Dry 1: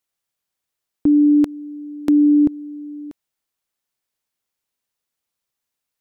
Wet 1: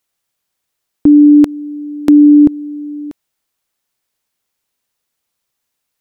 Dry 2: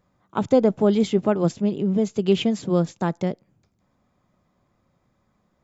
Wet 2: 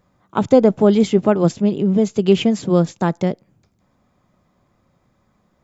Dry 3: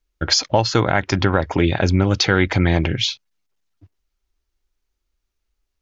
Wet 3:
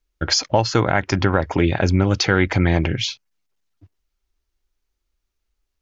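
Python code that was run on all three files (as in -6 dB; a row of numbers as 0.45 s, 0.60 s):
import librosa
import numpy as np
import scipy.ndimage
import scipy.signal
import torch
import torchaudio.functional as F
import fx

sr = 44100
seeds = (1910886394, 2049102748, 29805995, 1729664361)

y = fx.dynamic_eq(x, sr, hz=3700.0, q=3.0, threshold_db=-41.0, ratio=4.0, max_db=-5)
y = y * 10.0 ** (-1.5 / 20.0) / np.max(np.abs(y))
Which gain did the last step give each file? +8.0 dB, +5.5 dB, -0.5 dB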